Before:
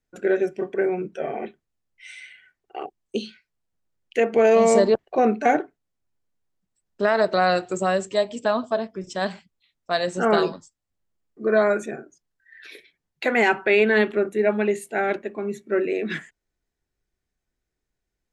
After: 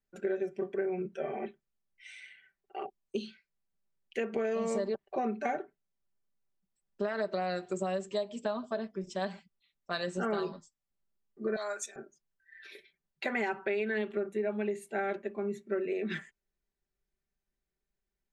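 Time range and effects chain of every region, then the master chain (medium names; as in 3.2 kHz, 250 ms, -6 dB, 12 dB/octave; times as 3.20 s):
11.56–11.96 s: high-pass 1 kHz + resonant high shelf 3.3 kHz +11.5 dB, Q 1.5 + three bands expanded up and down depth 70%
whole clip: treble shelf 6.6 kHz -5 dB; comb 5.1 ms, depth 57%; compression 6:1, threshold -21 dBFS; trim -8 dB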